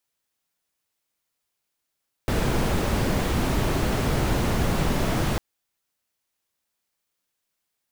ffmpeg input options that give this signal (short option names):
-f lavfi -i "anoisesrc=c=brown:a=0.351:d=3.1:r=44100:seed=1"